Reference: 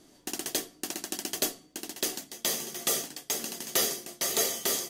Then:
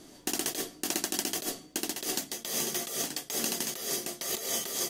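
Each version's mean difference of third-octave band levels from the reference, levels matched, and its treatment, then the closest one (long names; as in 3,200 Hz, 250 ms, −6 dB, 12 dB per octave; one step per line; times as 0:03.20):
6.0 dB: compressor whose output falls as the input rises −35 dBFS, ratio −1
level +2.5 dB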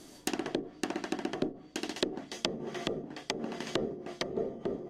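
13.0 dB: treble cut that deepens with the level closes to 350 Hz, closed at −27.5 dBFS
level +6 dB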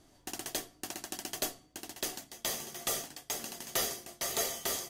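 2.0 dB: drawn EQ curve 110 Hz 0 dB, 170 Hz −11 dB, 460 Hz −12 dB, 700 Hz −6 dB, 4,400 Hz −11 dB
level +5 dB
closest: third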